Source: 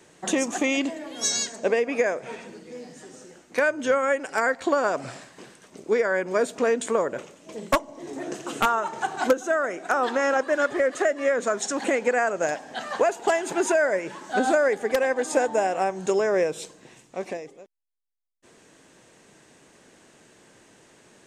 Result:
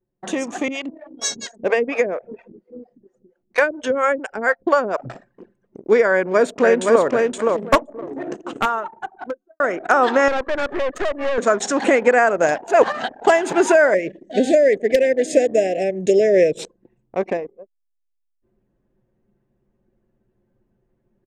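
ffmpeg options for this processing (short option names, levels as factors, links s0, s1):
-filter_complex "[0:a]asettb=1/sr,asplit=3[s0][s1][s2];[s0]atrim=end=0.684[s3];[s1]atrim=start=0.68:end=5.1,asetpts=PTS-STARTPTS,afade=t=in:d=0.004:c=qsin,afade=t=out:st=4.416:d=0.004:c=qsin,acrossover=split=450[s4][s5];[s4]aeval=exprs='val(0)*(1-1/2+1/2*cos(2*PI*4.3*n/s))':c=same[s6];[s5]aeval=exprs='val(0)*(1-1/2-1/2*cos(2*PI*4.3*n/s))':c=same[s7];[s6][s7]amix=inputs=2:normalize=0[s8];[s2]atrim=start=5.096[s9];[s3][s8]acrossfade=d=0.004:c1=hsin:c2=qsin[s10];[s10][s9]acrossfade=d=0.004:c1=qsin:c2=hsin,asplit=2[s11][s12];[s12]afade=t=in:st=6.11:d=0.01,afade=t=out:st=7.04:d=0.01,aecho=0:1:520|1040|1560:0.707946|0.141589|0.0283178[s13];[s11][s13]amix=inputs=2:normalize=0,asettb=1/sr,asplit=3[s14][s15][s16];[s14]atrim=end=10.284[s17];[s15]atrim=start=10.28:end=11.38,asetpts=PTS-STARTPTS,afade=t=in:d=0.004:c=qsin,afade=t=out:st=1.096:d=0.004:c=qsin,aeval=exprs='(tanh(22.4*val(0)+0.7)-tanh(0.7))/22.4':c=same[s18];[s16]atrim=start=11.376[s19];[s17][s18]acrossfade=d=0.004:c1=hsin:c2=qsin[s20];[s20][s19]acrossfade=d=0.004:c1=qsin:c2=hsin,asettb=1/sr,asplit=3[s21][s22][s23];[s21]atrim=end=13.944[s24];[s22]atrim=start=13.94:end=16.59,asetpts=PTS-STARTPTS,afade=t=in:d=0.004:c=qsin,afade=t=out:st=2.646:d=0.004:c=qsin,asuperstop=centerf=1100:order=12:qfactor=1[s25];[s23]atrim=start=16.586[s26];[s24][s25]acrossfade=d=0.004:c1=hsin:c2=qsin[s27];[s27][s26]acrossfade=d=0.004:c1=qsin:c2=hsin,asplit=4[s28][s29][s30][s31];[s28]atrim=end=9.6,asetpts=PTS-STARTPTS,afade=t=out:st=7.79:d=1.81[s32];[s29]atrim=start=9.6:end=12.622,asetpts=PTS-STARTPTS,afade=t=in:d=0.004:c=hsin[s33];[s30]atrim=start=12.618:end=13.212,asetpts=PTS-STARTPTS,areverse[s34];[s31]atrim=start=13.208[s35];[s32][s33]concat=n=2:v=0:a=1[s36];[s36][s34]acrossfade=d=0.004:c1=hsin:c2=hsin[s37];[s37][s35]acrossfade=d=0.004:c1=hsin:c2=hsin,anlmdn=1.58,highshelf=f=6900:g=-11.5,dynaudnorm=f=270:g=9:m=3.76"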